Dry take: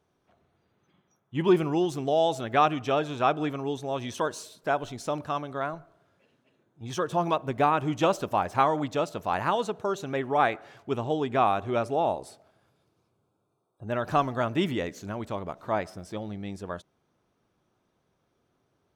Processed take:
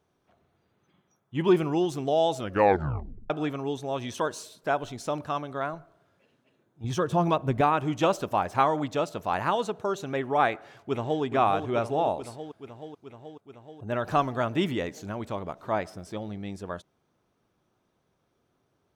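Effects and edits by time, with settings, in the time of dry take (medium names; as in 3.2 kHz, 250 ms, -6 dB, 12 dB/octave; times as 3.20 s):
2.37 s: tape stop 0.93 s
6.84–7.61 s: bass shelf 210 Hz +10.5 dB
10.52–11.22 s: echo throw 430 ms, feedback 75%, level -6.5 dB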